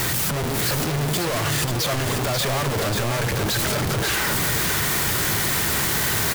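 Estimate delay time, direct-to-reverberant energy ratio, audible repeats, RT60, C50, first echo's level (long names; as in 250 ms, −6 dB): 540 ms, no reverb audible, 1, no reverb audible, no reverb audible, −6.0 dB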